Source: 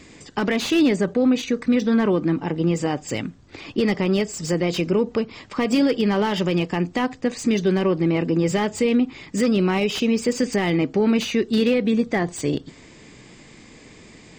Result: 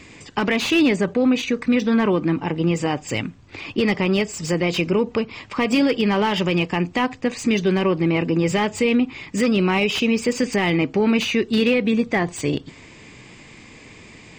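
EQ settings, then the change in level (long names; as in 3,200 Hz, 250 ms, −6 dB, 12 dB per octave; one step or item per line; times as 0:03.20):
graphic EQ with 15 bands 100 Hz +5 dB, 1,000 Hz +4 dB, 2,500 Hz +7 dB
0.0 dB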